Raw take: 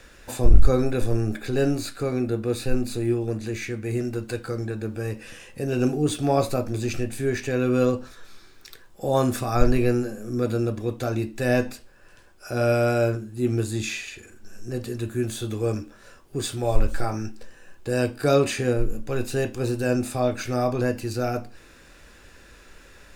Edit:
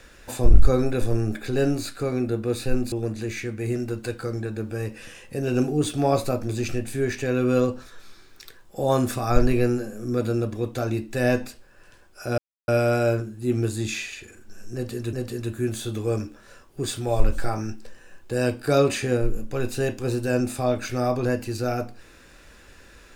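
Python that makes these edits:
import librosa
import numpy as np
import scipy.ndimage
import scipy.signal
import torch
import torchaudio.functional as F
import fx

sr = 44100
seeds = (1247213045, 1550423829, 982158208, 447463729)

y = fx.edit(x, sr, fx.cut(start_s=2.92, length_s=0.25),
    fx.insert_silence(at_s=12.63, length_s=0.3),
    fx.repeat(start_s=14.69, length_s=0.39, count=2), tone=tone)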